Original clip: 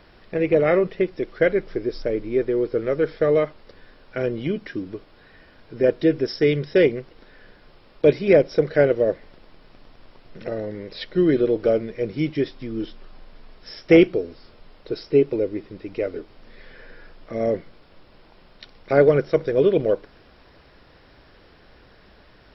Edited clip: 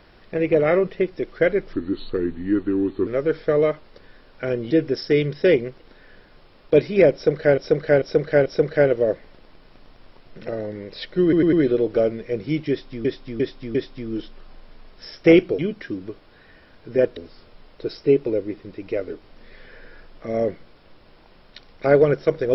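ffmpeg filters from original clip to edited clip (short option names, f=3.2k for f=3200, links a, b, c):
-filter_complex "[0:a]asplit=15[a][b][c][d][e][f][g][h][i][j][k][l][m][n][o];[a]atrim=end=1.734[p];[b]atrim=start=1.73:end=2.8,asetpts=PTS-STARTPTS,asetrate=35280,aresample=44100[q];[c]atrim=start=2.796:end=4.442[r];[d]atrim=start=6.018:end=8.892[s];[e]atrim=start=8.448:end=8.892[t];[f]atrim=start=8.448:end=8.892[u];[g]atrim=start=8.448:end=11.322[v];[h]atrim=start=11.218:end=11.322[w];[i]atrim=start=11.218:end=11.322[x];[j]atrim=start=11.218:end=12.742[y];[k]atrim=start=12.388:end=12.742[z];[l]atrim=start=12.388:end=12.742[aa];[m]atrim=start=12.388:end=14.232[ab];[n]atrim=start=4.438:end=6.022[ac];[o]atrim=start=14.228[ad];[p][q]acrossfade=d=0.004:c1=hsin:c2=hsin[ae];[ae][r]acrossfade=d=0.004:c1=hsin:c2=hsin[af];[af][s]acrossfade=d=0.004:c1=hsin:c2=hsin[ag];[ag][t]acrossfade=d=0.004:c1=hsin:c2=hsin[ah];[ah][u]acrossfade=d=0.004:c1=hsin:c2=hsin[ai];[ai][v]acrossfade=d=0.004:c1=hsin:c2=hsin[aj];[aj][w]acrossfade=d=0.004:c1=hsin:c2=hsin[ak];[ak][x]acrossfade=d=0.004:c1=hsin:c2=hsin[al];[al][y]acrossfade=d=0.004:c1=hsin:c2=hsin[am];[am][z]acrossfade=d=0.004:c1=hsin:c2=hsin[an];[an][aa]acrossfade=d=0.004:c1=hsin:c2=hsin[ao];[ao][ab]acrossfade=d=0.004:c1=hsin:c2=hsin[ap];[ap][ac]acrossfade=d=0.004:c1=hsin:c2=hsin[aq];[aq][ad]acrossfade=d=0.004:c1=hsin:c2=hsin"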